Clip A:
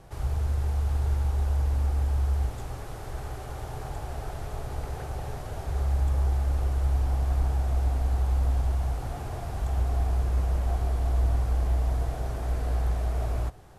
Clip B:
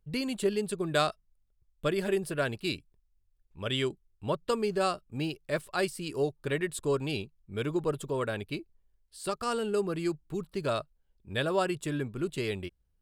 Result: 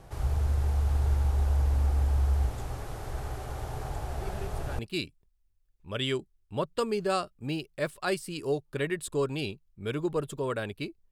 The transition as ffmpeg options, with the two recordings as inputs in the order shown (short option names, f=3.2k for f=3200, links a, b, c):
-filter_complex "[1:a]asplit=2[a][b];[0:a]apad=whole_dur=11.11,atrim=end=11.11,atrim=end=4.792[c];[b]atrim=start=2.498:end=8.82[d];[a]atrim=start=1.91:end=2.5,asetpts=PTS-STARTPTS,volume=-14dB,afade=t=in:d=0.004:c=hsin,afade=t=out:st=0.586:d=0.004:c=hsin,adelay=4200[e];[c][d]acrossfade=d=0.004:c1=hsin:c2=hsin[f];[f][e]amix=inputs=2:normalize=0"